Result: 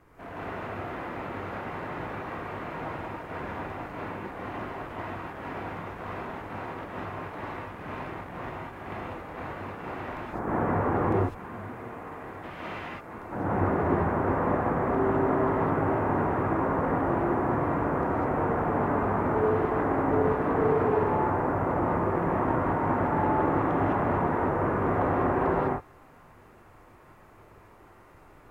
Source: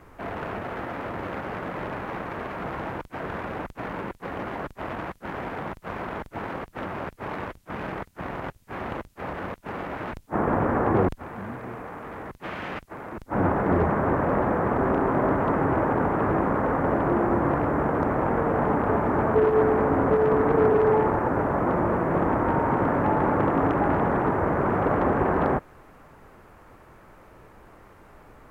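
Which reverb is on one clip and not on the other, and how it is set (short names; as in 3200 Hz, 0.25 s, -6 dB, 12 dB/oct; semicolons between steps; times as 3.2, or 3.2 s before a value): non-linear reverb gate 0.23 s rising, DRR -6 dB; gain -9.5 dB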